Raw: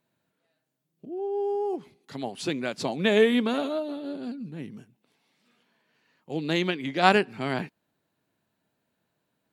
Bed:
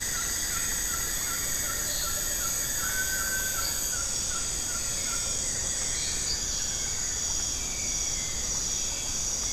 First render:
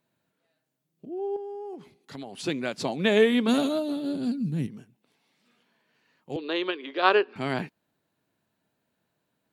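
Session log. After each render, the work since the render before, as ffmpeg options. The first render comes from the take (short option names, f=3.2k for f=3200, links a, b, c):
-filter_complex "[0:a]asettb=1/sr,asplit=3[a][b][c];[a]atrim=end=1.364[d];[b]atrim=start=1.36:end=2.44,asetpts=PTS-STARTPTS,afade=t=in:d=0.004:c=qsin,afade=t=out:st=1.076:d=0.004:c=qsin,acompressor=threshold=-34dB:ratio=12:attack=3.2:release=140:knee=1:detection=peak[e];[c]atrim=start=2.436[f];[d][e]acrossfade=d=0.004:c1=hsin:c2=qsin[g];[g][f]acrossfade=d=0.004:c1=qsin:c2=hsin,asplit=3[h][i][j];[h]afade=t=out:st=3.47:d=0.02[k];[i]bass=f=250:g=14,treble=f=4k:g=12,afade=t=in:st=3.47:d=0.02,afade=t=out:st=4.66:d=0.02[l];[j]afade=t=in:st=4.66:d=0.02[m];[k][l][m]amix=inputs=3:normalize=0,asettb=1/sr,asplit=3[n][o][p];[n]atrim=end=6.364[q];[o]atrim=start=6.36:end=7.36,asetpts=PTS-STARTPTS,afade=t=in:d=0.004:c=qsin,afade=t=out:st=0.996:d=0.004:c=qsin,highpass=f=350:w=0.5412,highpass=f=350:w=1.3066,equalizer=f=420:t=q:w=4:g=4,equalizer=f=750:t=q:w=4:g=-6,equalizer=f=1.1k:t=q:w=4:g=5,equalizer=f=2.1k:t=q:w=4:g=-7,lowpass=f=4k:w=0.5412,lowpass=f=4k:w=1.3066[r];[p]atrim=start=7.356[s];[q][r]acrossfade=d=0.004:c1=hsin:c2=qsin[t];[t][s]acrossfade=d=0.004:c1=qsin:c2=hsin"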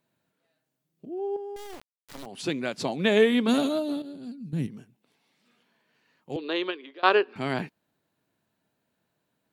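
-filter_complex "[0:a]asettb=1/sr,asplit=3[a][b][c];[a]atrim=end=1.564[d];[b]atrim=start=1.56:end=2.26,asetpts=PTS-STARTPTS,afade=t=in:d=0.004:c=qsin,afade=t=out:st=0.696:d=0.004:c=qsin,acrusher=bits=4:dc=4:mix=0:aa=0.000001[e];[c]atrim=start=2.256[f];[d][e]acrossfade=d=0.004:c1=hsin:c2=qsin[g];[g][f]acrossfade=d=0.004:c1=qsin:c2=hsin,asplit=4[h][i][j][k];[h]atrim=end=4.022[l];[i]atrim=start=4.018:end=4.532,asetpts=PTS-STARTPTS,volume=-11dB[m];[j]atrim=start=4.528:end=7.03,asetpts=PTS-STARTPTS,afade=t=out:st=2.082:d=0.42:silence=0.0749894[n];[k]atrim=start=7.03,asetpts=PTS-STARTPTS,afade=t=in:d=0.004:c=hsin:silence=0.0749894[o];[l][m]acrossfade=d=0.004:c1=hsin:c2=hsin[p];[n][o]concat=n=2:v=0:a=1[q];[p][q]acrossfade=d=0.004:c1=hsin:c2=hsin"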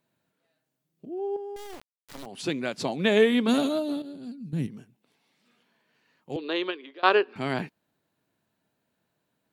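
-af anull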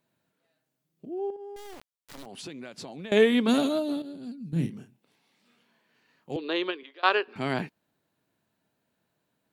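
-filter_complex "[0:a]asettb=1/sr,asplit=3[a][b][c];[a]atrim=end=1.304[d];[b]atrim=start=1.3:end=3.12,asetpts=PTS-STARTPTS,afade=t=in:d=0.004:c=qsin,afade=t=out:st=1.816:d=0.004:c=qsin,acompressor=threshold=-38dB:ratio=5:attack=3.2:release=140:knee=1:detection=peak[e];[c]atrim=start=3.116[f];[d][e]acrossfade=d=0.004:c1=hsin:c2=qsin[g];[g][f]acrossfade=d=0.004:c1=qsin:c2=hsin,asettb=1/sr,asplit=3[h][i][j];[h]atrim=end=4.494[k];[i]atrim=start=4.49:end=6.32,asetpts=PTS-STARTPTS,afade=t=in:d=0.004:c=qsin,afade=t=out:st=1.826:d=0.004:c=qsin,asplit=2[l][m];[m]adelay=30,volume=-6dB[n];[l][n]amix=inputs=2:normalize=0,atrim=end_sample=80703[o];[j]atrim=start=6.316[p];[k][o]acrossfade=d=0.004:c1=hsin:c2=qsin[q];[q][p]acrossfade=d=0.004:c1=qsin:c2=hsin,asettb=1/sr,asplit=3[r][s][t];[r]atrim=end=6.834[u];[s]atrim=start=6.83:end=7.28,asetpts=PTS-STARTPTS,afade=t=in:d=0.004:c=qsin,afade=t=out:st=0.446:d=0.004:c=qsin,highpass=f=740:p=1[v];[t]atrim=start=7.276[w];[u][v]acrossfade=d=0.004:c1=hsin:c2=qsin[x];[x][w]acrossfade=d=0.004:c1=qsin:c2=hsin"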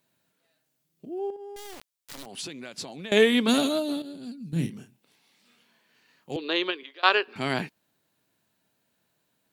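-af "highshelf=f=2.2k:g=8"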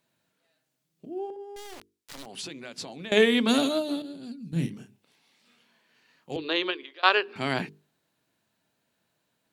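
-af "highshelf=f=11k:g=-8,bandreject=f=50:t=h:w=6,bandreject=f=100:t=h:w=6,bandreject=f=150:t=h:w=6,bandreject=f=200:t=h:w=6,bandreject=f=250:t=h:w=6,bandreject=f=300:t=h:w=6,bandreject=f=350:t=h:w=6,bandreject=f=400:t=h:w=6,bandreject=f=450:t=h:w=6"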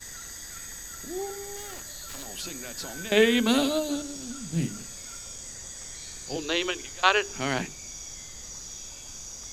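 -filter_complex "[1:a]volume=-11dB[a];[0:a][a]amix=inputs=2:normalize=0"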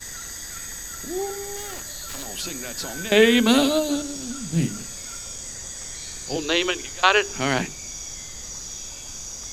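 -af "volume=5.5dB,alimiter=limit=-3dB:level=0:latency=1"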